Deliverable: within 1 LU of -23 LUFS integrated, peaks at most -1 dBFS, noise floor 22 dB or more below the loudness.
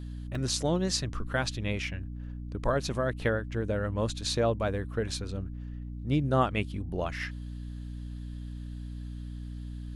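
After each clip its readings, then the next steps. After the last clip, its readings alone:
dropouts 1; longest dropout 2.6 ms; hum 60 Hz; highest harmonic 300 Hz; hum level -36 dBFS; loudness -32.0 LUFS; peak level -13.5 dBFS; loudness target -23.0 LUFS
-> interpolate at 0.35 s, 2.6 ms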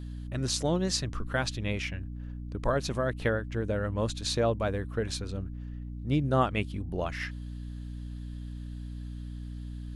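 dropouts 0; hum 60 Hz; highest harmonic 300 Hz; hum level -36 dBFS
-> hum notches 60/120/180/240/300 Hz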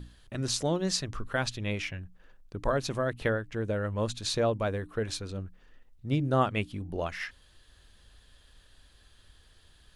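hum not found; loudness -31.5 LUFS; peak level -13.5 dBFS; loudness target -23.0 LUFS
-> trim +8.5 dB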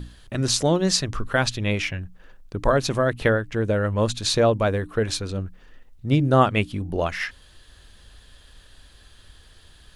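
loudness -23.0 LUFS; peak level -5.0 dBFS; noise floor -52 dBFS

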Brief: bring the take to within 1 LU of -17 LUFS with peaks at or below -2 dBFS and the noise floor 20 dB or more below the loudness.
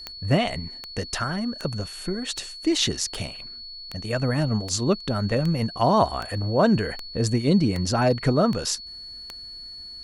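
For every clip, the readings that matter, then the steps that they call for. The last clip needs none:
clicks found 13; steady tone 4.4 kHz; tone level -37 dBFS; loudness -24.5 LUFS; peak level -7.5 dBFS; loudness target -17.0 LUFS
-> de-click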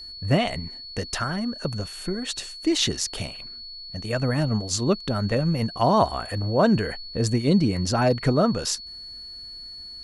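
clicks found 0; steady tone 4.4 kHz; tone level -37 dBFS
-> band-stop 4.4 kHz, Q 30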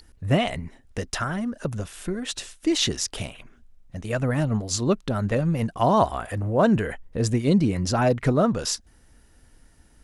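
steady tone not found; loudness -24.5 LUFS; peak level -7.0 dBFS; loudness target -17.0 LUFS
-> trim +7.5 dB; peak limiter -2 dBFS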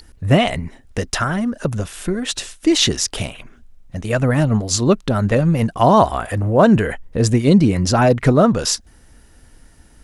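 loudness -17.0 LUFS; peak level -2.0 dBFS; noise floor -48 dBFS

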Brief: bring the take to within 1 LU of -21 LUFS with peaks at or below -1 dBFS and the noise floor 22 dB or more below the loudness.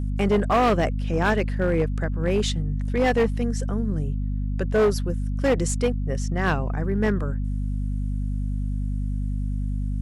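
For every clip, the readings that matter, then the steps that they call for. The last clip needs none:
clipped samples 2.0%; clipping level -15.0 dBFS; hum 50 Hz; highest harmonic 250 Hz; hum level -23 dBFS; loudness -25.0 LUFS; peak level -15.0 dBFS; loudness target -21.0 LUFS
-> clip repair -15 dBFS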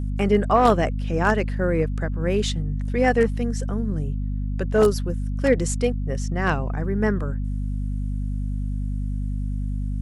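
clipped samples 0.0%; hum 50 Hz; highest harmonic 250 Hz; hum level -23 dBFS
-> hum notches 50/100/150/200/250 Hz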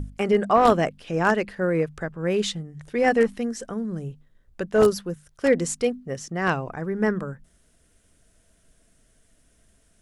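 hum not found; loudness -24.0 LUFS; peak level -5.5 dBFS; loudness target -21.0 LUFS
-> trim +3 dB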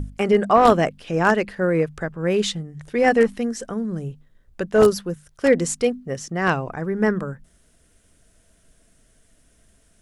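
loudness -21.0 LUFS; peak level -2.5 dBFS; noise floor -59 dBFS

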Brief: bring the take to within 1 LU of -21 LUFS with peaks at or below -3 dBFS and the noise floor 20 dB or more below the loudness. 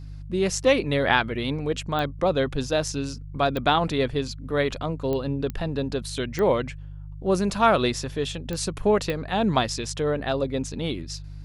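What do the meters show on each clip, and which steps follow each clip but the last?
clicks found 7; hum 50 Hz; highest harmonic 150 Hz; hum level -36 dBFS; loudness -25.0 LUFS; peak level -3.5 dBFS; loudness target -21.0 LUFS
-> de-click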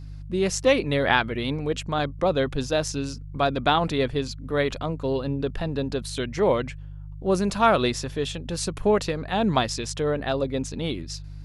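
clicks found 0; hum 50 Hz; highest harmonic 150 Hz; hum level -36 dBFS
-> de-hum 50 Hz, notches 3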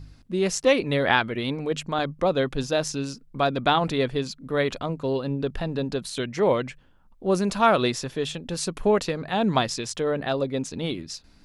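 hum not found; loudness -25.5 LUFS; peak level -3.5 dBFS; loudness target -21.0 LUFS
-> trim +4.5 dB; peak limiter -3 dBFS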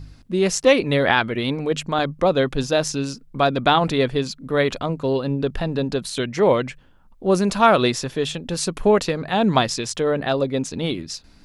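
loudness -21.0 LUFS; peak level -3.0 dBFS; noise floor -51 dBFS

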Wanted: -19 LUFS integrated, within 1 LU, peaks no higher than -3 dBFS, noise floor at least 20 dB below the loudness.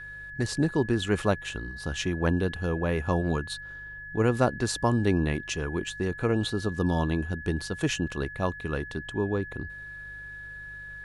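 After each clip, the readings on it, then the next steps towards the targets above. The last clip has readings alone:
hum 50 Hz; highest harmonic 150 Hz; hum level -48 dBFS; steady tone 1.7 kHz; tone level -39 dBFS; loudness -28.5 LUFS; peak level -9.0 dBFS; loudness target -19.0 LUFS
-> de-hum 50 Hz, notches 3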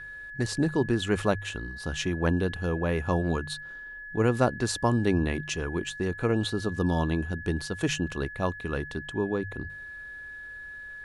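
hum not found; steady tone 1.7 kHz; tone level -39 dBFS
-> band-stop 1.7 kHz, Q 30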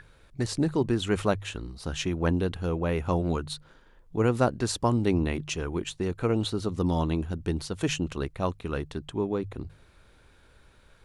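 steady tone not found; loudness -29.0 LUFS; peak level -9.5 dBFS; loudness target -19.0 LUFS
-> trim +10 dB; peak limiter -3 dBFS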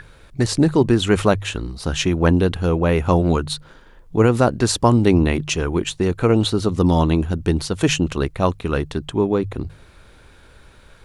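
loudness -19.0 LUFS; peak level -3.0 dBFS; noise floor -48 dBFS

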